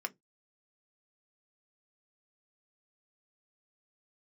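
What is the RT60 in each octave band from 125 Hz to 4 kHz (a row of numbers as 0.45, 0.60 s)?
0.25, 0.20, 0.20, 0.15, 0.10, 0.15 s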